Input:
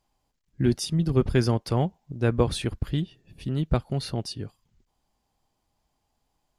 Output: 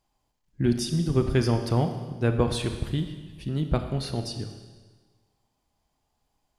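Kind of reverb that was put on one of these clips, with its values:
four-comb reverb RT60 1.4 s, combs from 26 ms, DRR 6.5 dB
level −1 dB

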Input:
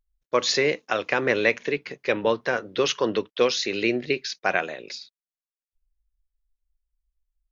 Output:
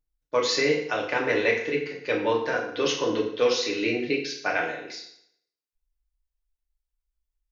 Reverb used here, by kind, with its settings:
feedback delay network reverb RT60 0.72 s, low-frequency decay 0.9×, high-frequency decay 0.85×, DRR −2.5 dB
level −6 dB

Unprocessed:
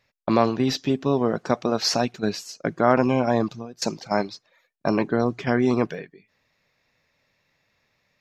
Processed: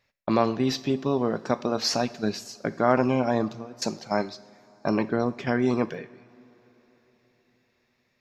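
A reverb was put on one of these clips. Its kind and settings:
coupled-rooms reverb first 0.51 s, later 4.2 s, from −18 dB, DRR 13 dB
level −3 dB

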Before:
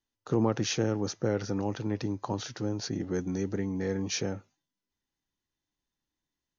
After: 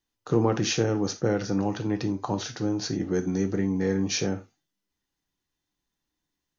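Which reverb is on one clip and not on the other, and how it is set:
reverb whose tail is shaped and stops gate 110 ms falling, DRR 6.5 dB
level +3.5 dB

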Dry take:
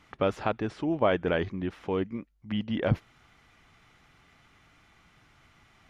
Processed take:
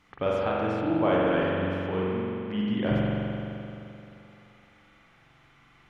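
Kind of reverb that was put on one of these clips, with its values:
spring reverb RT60 2.9 s, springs 43 ms, chirp 50 ms, DRR −5.5 dB
level −4 dB

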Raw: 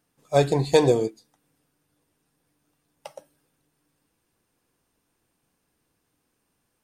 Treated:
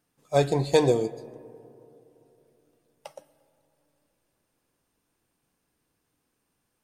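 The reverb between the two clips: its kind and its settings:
comb and all-pass reverb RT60 3.1 s, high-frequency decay 0.3×, pre-delay 75 ms, DRR 19.5 dB
level −2.5 dB

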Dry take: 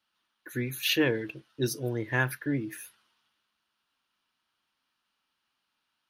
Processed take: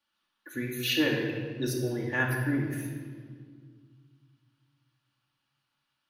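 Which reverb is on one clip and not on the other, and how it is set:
rectangular room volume 2,700 cubic metres, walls mixed, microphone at 2.4 metres
level −4 dB

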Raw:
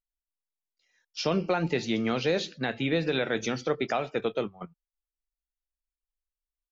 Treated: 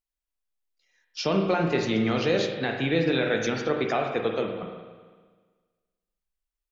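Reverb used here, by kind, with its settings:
spring reverb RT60 1.5 s, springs 36/46 ms, chirp 70 ms, DRR 2.5 dB
level +1 dB

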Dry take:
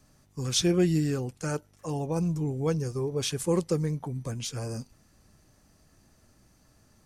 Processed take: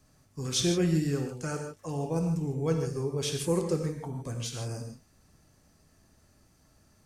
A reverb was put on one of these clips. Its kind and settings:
reverb whose tail is shaped and stops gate 180 ms flat, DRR 3 dB
level −3 dB

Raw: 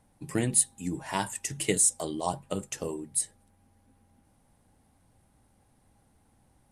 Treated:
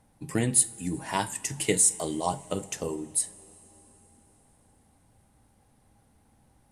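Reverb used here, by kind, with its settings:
coupled-rooms reverb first 0.31 s, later 4.2 s, from −18 dB, DRR 12 dB
level +1.5 dB

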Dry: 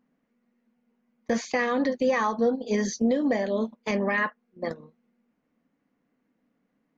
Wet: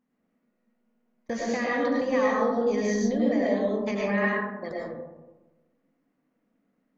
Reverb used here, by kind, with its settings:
comb and all-pass reverb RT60 1.2 s, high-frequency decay 0.3×, pre-delay 65 ms, DRR −4 dB
level −6 dB

